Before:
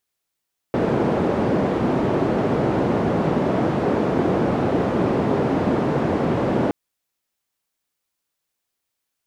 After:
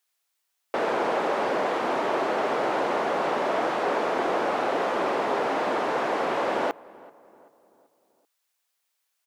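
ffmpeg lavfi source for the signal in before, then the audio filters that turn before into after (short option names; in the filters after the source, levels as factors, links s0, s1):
-f lavfi -i "anoisesrc=c=white:d=5.97:r=44100:seed=1,highpass=f=130,lowpass=f=440,volume=2.8dB"
-filter_complex "[0:a]highpass=670,asplit=2[s0][s1];[s1]asoftclip=type=tanh:threshold=0.0631,volume=0.398[s2];[s0][s2]amix=inputs=2:normalize=0,asplit=2[s3][s4];[s4]adelay=385,lowpass=f=1600:p=1,volume=0.0841,asplit=2[s5][s6];[s6]adelay=385,lowpass=f=1600:p=1,volume=0.5,asplit=2[s7][s8];[s8]adelay=385,lowpass=f=1600:p=1,volume=0.5,asplit=2[s9][s10];[s10]adelay=385,lowpass=f=1600:p=1,volume=0.5[s11];[s3][s5][s7][s9][s11]amix=inputs=5:normalize=0"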